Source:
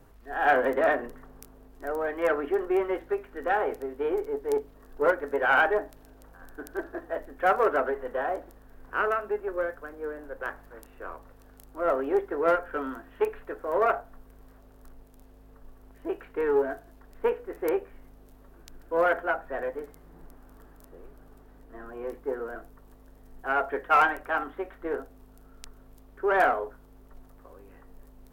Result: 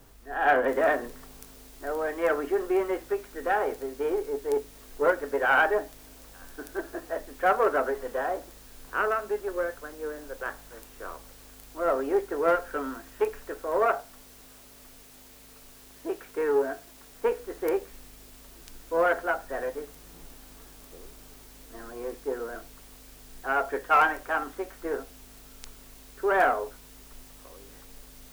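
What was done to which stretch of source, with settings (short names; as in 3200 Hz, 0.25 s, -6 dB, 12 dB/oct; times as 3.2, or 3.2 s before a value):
0.68 noise floor step -62 dB -53 dB
13.85–17.28 low shelf 68 Hz -10.5 dB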